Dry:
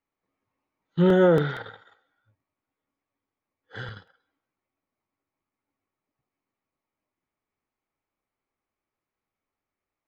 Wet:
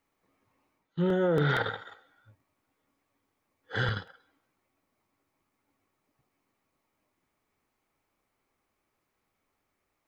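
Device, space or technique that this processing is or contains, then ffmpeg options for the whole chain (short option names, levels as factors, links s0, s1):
compression on the reversed sound: -af "areverse,acompressor=threshold=0.0251:ratio=16,areverse,volume=2.82"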